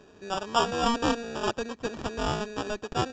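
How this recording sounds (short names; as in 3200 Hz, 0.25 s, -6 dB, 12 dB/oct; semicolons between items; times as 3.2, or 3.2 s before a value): aliases and images of a low sample rate 2100 Hz, jitter 0%; µ-law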